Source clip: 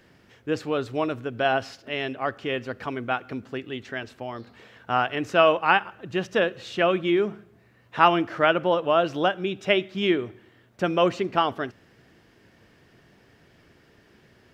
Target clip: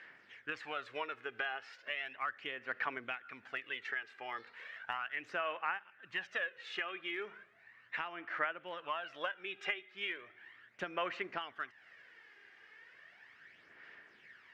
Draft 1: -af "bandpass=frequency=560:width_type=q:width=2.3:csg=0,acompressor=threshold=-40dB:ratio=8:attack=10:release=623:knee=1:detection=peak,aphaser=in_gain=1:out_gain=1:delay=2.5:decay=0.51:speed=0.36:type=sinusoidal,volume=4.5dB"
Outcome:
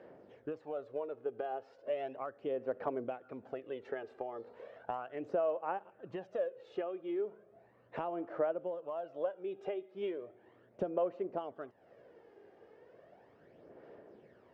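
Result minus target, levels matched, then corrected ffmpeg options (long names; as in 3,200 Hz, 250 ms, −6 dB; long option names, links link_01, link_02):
2,000 Hz band −17.0 dB
-af "bandpass=frequency=1900:width_type=q:width=2.3:csg=0,acompressor=threshold=-40dB:ratio=8:attack=10:release=623:knee=1:detection=peak,aphaser=in_gain=1:out_gain=1:delay=2.5:decay=0.51:speed=0.36:type=sinusoidal,volume=4.5dB"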